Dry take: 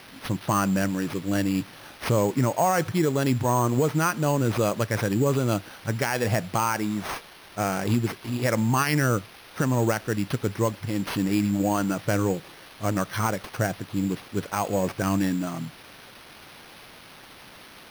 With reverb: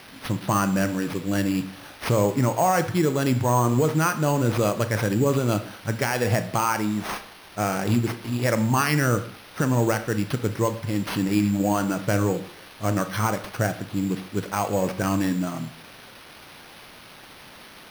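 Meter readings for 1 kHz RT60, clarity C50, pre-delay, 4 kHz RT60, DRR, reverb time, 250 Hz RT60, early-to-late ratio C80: 0.65 s, 13.0 dB, 21 ms, 0.45 s, 9.5 dB, 0.65 s, 0.60 s, 16.5 dB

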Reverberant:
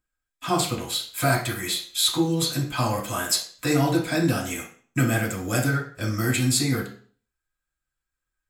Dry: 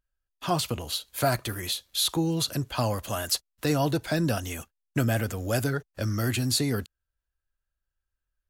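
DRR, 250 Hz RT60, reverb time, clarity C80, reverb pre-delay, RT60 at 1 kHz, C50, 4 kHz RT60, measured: -4.5 dB, 0.45 s, 0.45 s, 12.0 dB, 3 ms, 0.45 s, 7.5 dB, 0.45 s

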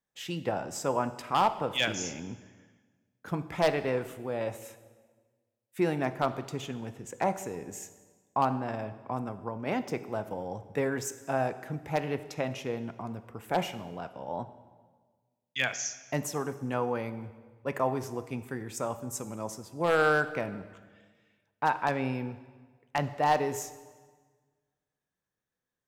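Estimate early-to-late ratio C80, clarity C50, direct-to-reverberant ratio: 15.0 dB, 13.5 dB, 11.5 dB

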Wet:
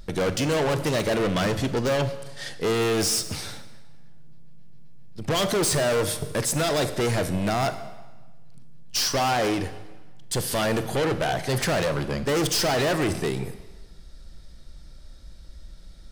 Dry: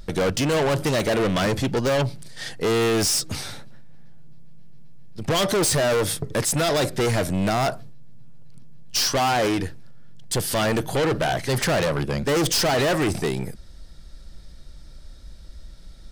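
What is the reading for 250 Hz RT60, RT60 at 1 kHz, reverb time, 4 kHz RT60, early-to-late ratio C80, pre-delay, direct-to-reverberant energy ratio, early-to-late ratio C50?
1.2 s, 1.3 s, 1.2 s, 1.1 s, 14.0 dB, 29 ms, 11.0 dB, 12.0 dB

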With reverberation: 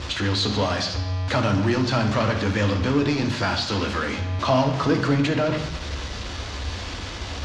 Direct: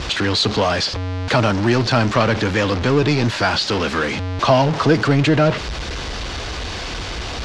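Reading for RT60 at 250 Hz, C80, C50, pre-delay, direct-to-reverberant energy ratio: 0.95 s, 10.5 dB, 8.0 dB, 3 ms, 3.5 dB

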